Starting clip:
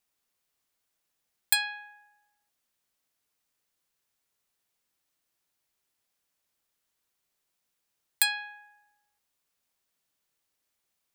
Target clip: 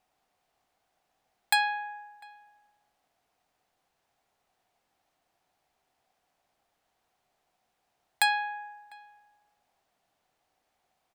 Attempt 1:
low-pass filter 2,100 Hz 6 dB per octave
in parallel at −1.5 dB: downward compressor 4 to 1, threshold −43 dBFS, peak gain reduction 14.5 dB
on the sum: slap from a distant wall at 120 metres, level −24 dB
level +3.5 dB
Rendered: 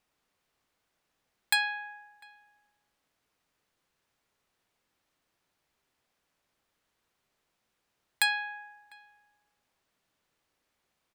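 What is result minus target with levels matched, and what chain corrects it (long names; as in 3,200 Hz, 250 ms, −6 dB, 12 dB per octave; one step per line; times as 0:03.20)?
1,000 Hz band −6.5 dB
low-pass filter 2,100 Hz 6 dB per octave
parametric band 740 Hz +13 dB 0.47 octaves
in parallel at −1.5 dB: downward compressor 4 to 1, threshold −43 dBFS, peak gain reduction 15 dB
on the sum: slap from a distant wall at 120 metres, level −24 dB
level +3.5 dB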